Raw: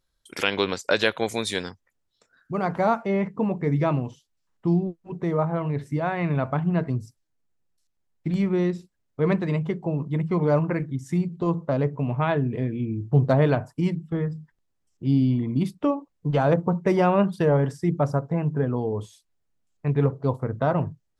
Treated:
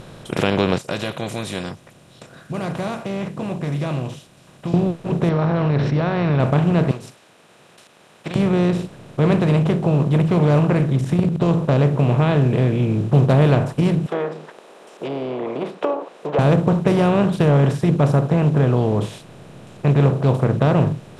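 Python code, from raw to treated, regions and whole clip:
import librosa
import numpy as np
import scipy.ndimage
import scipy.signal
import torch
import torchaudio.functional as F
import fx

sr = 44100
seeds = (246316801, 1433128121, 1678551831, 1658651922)

y = fx.chain(x, sr, fx.pre_emphasis(coefficient=0.9),
    fx.notch_comb(f0_hz=440.0), at=(0.78, 4.74))
y = fx.chain(y, sr, fx.cheby_ripple(hz=5700.0, ripple_db=9),
    fx.peak_eq(hz=2900.0, db=-2.5, octaves=2.0),
    fx.env_flatten(amount_pct=70), at=(5.29, 6.4))
y = fx.chain(y, sr, fx.highpass(hz=1400.0, slope=12),
    fx.transient(attack_db=5, sustain_db=-3), at=(6.91, 8.36))
y = fx.chain(y, sr, fx.low_shelf(hz=290.0, db=10.5),
    fx.level_steps(step_db=12), at=(11.01, 11.41))
y = fx.chain(y, sr, fx.env_lowpass_down(base_hz=1000.0, full_db=-20.0),
    fx.ellip_highpass(hz=410.0, order=4, stop_db=80),
    fx.peak_eq(hz=850.0, db=7.0, octaves=1.8), at=(14.06, 16.39))
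y = fx.bin_compress(y, sr, power=0.4)
y = fx.low_shelf(y, sr, hz=300.0, db=8.0)
y = F.gain(torch.from_numpy(y), -4.0).numpy()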